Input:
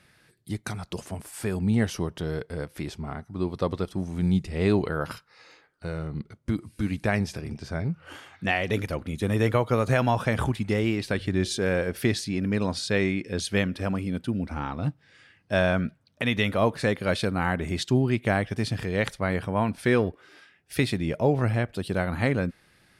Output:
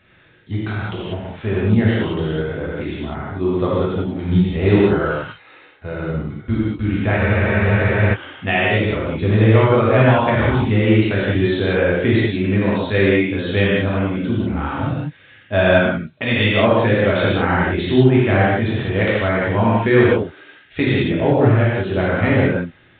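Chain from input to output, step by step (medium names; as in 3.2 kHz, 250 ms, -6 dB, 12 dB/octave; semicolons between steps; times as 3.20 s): gated-style reverb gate 220 ms flat, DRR -7.5 dB; spectral freeze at 7.20 s, 0.95 s; trim +1.5 dB; µ-law 64 kbps 8 kHz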